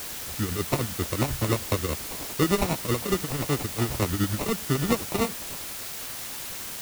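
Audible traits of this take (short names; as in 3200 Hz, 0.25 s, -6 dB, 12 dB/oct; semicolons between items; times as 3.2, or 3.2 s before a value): aliases and images of a low sample rate 1600 Hz, jitter 0%; tremolo triangle 10 Hz, depth 85%; a quantiser's noise floor 6-bit, dither triangular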